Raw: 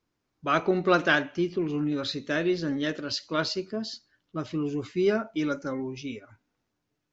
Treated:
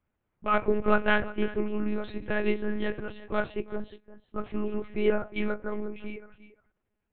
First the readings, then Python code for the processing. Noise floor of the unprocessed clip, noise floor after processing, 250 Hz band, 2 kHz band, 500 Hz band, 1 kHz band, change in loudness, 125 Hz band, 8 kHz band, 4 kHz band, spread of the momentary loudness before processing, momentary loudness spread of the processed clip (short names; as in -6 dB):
-81 dBFS, -81 dBFS, -3.0 dB, -2.0 dB, -1.0 dB, -1.5 dB, -2.0 dB, -4.5 dB, n/a, -10.0 dB, 14 LU, 14 LU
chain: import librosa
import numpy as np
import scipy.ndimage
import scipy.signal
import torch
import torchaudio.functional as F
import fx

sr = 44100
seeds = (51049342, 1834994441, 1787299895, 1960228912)

y = scipy.signal.sosfilt(scipy.signal.butter(4, 2800.0, 'lowpass', fs=sr, output='sos'), x)
y = y + 10.0 ** (-16.5 / 20.0) * np.pad(y, (int(353 * sr / 1000.0), 0))[:len(y)]
y = fx.lpc_monotone(y, sr, seeds[0], pitch_hz=210.0, order=8)